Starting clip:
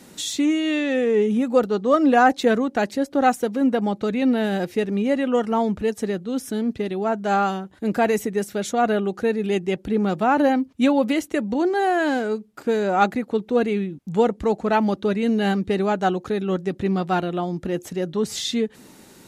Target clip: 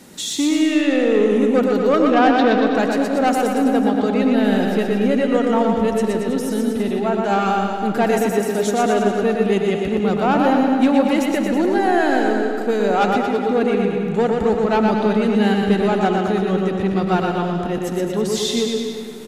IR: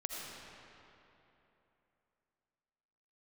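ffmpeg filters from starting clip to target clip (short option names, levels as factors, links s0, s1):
-filter_complex "[0:a]asettb=1/sr,asplit=3[s0][s1][s2];[s0]atrim=end=2.024[s3];[s1]atrim=start=2.02:end=2.67,asetpts=PTS-STARTPTS,afade=t=in:d=0.004:c=qsin,afade=t=out:st=0.646:d=0.004:c=qsin,lowpass=f=4100:w=0.5412,lowpass=f=4100:w=1.3066[s4];[s2]atrim=start=2.666[s5];[s3][s4]acrossfade=d=0.004:c1=hsin:c2=qsin[s6];[s6][s5]acrossfade=d=0.004:c1=qsin:c2=hsin,asoftclip=type=tanh:threshold=0.211,aecho=1:1:120|228|325.2|412.7|491.4:0.631|0.398|0.251|0.158|0.1,asplit=2[s7][s8];[1:a]atrim=start_sample=2205[s9];[s8][s9]afir=irnorm=-1:irlink=0,volume=0.668[s10];[s7][s10]amix=inputs=2:normalize=0,volume=0.891"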